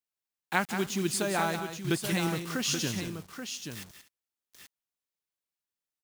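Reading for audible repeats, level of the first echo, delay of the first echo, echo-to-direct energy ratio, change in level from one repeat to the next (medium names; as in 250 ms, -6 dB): 3, -9.0 dB, 180 ms, -5.5 dB, no regular repeats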